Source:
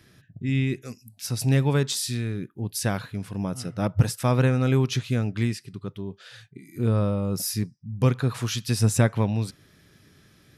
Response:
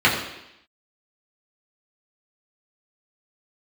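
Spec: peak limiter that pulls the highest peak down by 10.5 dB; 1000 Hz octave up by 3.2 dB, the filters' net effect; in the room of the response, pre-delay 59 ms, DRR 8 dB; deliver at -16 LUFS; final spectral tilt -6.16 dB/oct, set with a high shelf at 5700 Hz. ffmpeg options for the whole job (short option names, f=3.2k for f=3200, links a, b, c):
-filter_complex "[0:a]equalizer=f=1k:t=o:g=4.5,highshelf=f=5.7k:g=-8.5,alimiter=limit=-17dB:level=0:latency=1,asplit=2[a][b];[1:a]atrim=start_sample=2205,adelay=59[c];[b][c]afir=irnorm=-1:irlink=0,volume=-30dB[d];[a][d]amix=inputs=2:normalize=0,volume=12dB"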